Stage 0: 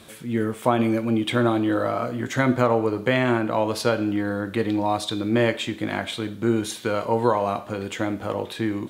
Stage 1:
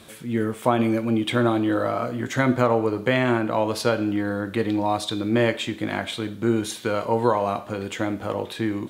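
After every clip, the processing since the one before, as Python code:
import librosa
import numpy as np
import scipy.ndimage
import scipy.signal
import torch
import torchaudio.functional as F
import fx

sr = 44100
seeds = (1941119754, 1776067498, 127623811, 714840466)

y = x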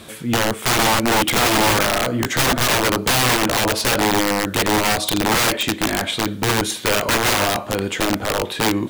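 y = (np.mod(10.0 ** (19.0 / 20.0) * x + 1.0, 2.0) - 1.0) / 10.0 ** (19.0 / 20.0)
y = F.gain(torch.from_numpy(y), 7.5).numpy()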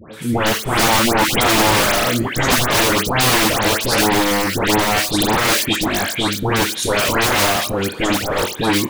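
y = fx.dispersion(x, sr, late='highs', ms=137.0, hz=1800.0)
y = F.gain(torch.from_numpy(y), 2.0).numpy()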